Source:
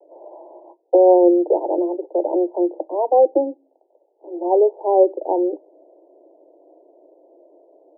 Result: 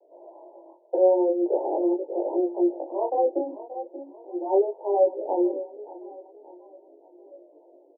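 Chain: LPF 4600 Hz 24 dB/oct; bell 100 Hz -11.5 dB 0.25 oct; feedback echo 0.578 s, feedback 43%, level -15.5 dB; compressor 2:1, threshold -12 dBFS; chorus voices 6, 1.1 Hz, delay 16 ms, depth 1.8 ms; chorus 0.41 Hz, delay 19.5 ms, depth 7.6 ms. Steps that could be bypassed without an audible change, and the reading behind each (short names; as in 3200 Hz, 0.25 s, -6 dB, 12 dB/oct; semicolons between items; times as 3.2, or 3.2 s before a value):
LPF 4600 Hz: input band ends at 1000 Hz; bell 100 Hz: input band starts at 250 Hz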